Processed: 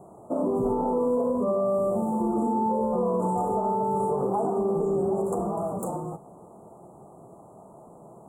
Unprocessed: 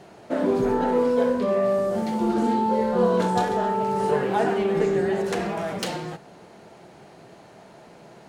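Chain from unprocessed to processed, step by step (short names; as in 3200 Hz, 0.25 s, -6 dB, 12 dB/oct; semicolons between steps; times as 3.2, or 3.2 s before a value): Chebyshev band-stop 1200–7400 Hz, order 5; limiter -17.5 dBFS, peak gain reduction 7 dB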